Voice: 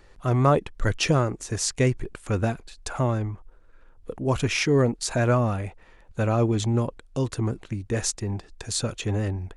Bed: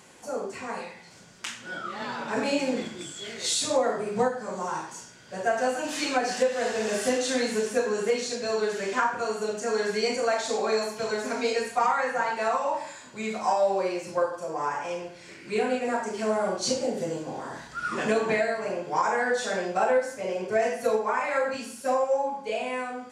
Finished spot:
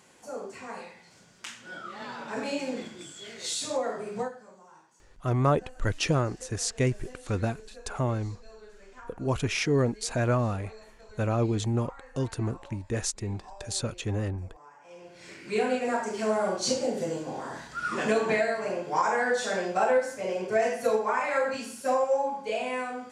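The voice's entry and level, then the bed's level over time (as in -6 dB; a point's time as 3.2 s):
5.00 s, -4.0 dB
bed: 4.16 s -5.5 dB
4.64 s -23.5 dB
14.78 s -23.5 dB
15.24 s -0.5 dB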